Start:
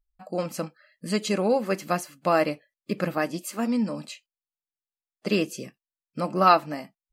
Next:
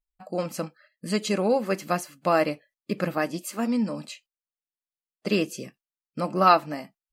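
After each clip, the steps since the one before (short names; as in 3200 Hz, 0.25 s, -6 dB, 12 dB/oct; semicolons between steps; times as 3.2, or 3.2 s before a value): gate -55 dBFS, range -10 dB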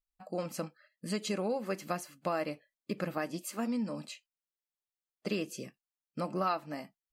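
compressor 3:1, threshold -25 dBFS, peak gain reduction 10 dB; gain -5.5 dB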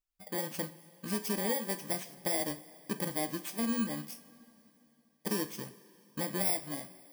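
FFT order left unsorted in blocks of 32 samples; two-slope reverb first 0.33 s, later 3.2 s, from -17 dB, DRR 8.5 dB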